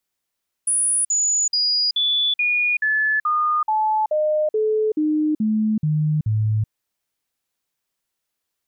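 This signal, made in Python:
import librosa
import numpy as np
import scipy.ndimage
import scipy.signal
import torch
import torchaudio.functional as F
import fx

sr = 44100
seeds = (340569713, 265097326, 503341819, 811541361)

y = fx.stepped_sweep(sr, from_hz=9780.0, direction='down', per_octave=2, tones=14, dwell_s=0.38, gap_s=0.05, level_db=-16.5)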